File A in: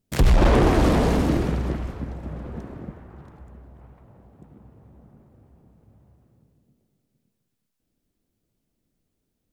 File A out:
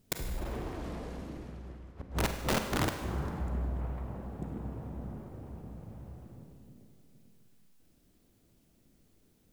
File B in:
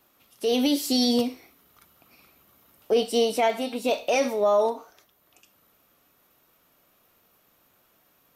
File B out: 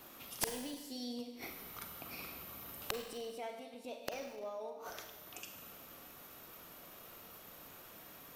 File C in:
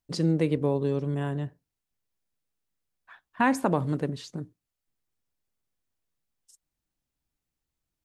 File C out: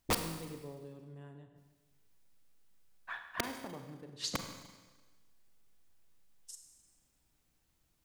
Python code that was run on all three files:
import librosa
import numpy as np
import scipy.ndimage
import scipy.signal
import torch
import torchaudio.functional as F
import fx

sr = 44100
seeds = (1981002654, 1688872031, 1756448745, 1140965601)

y = fx.gate_flip(x, sr, shuts_db=-24.0, range_db=-31)
y = (np.mod(10.0 ** (31.5 / 20.0) * y + 1.0, 2.0) - 1.0) / 10.0 ** (31.5 / 20.0)
y = fx.rev_schroeder(y, sr, rt60_s=1.3, comb_ms=33, drr_db=6.0)
y = y * 10.0 ** (8.5 / 20.0)